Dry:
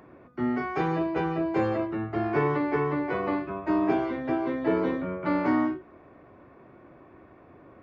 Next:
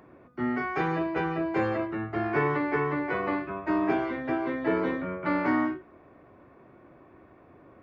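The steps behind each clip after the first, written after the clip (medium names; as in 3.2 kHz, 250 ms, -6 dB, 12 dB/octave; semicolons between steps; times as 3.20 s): dynamic bell 1.8 kHz, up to +6 dB, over -46 dBFS, Q 1.1; trim -2 dB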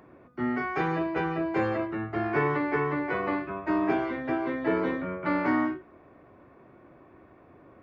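no audible change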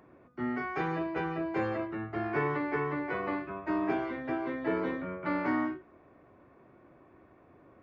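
resampled via 16 kHz; trim -4.5 dB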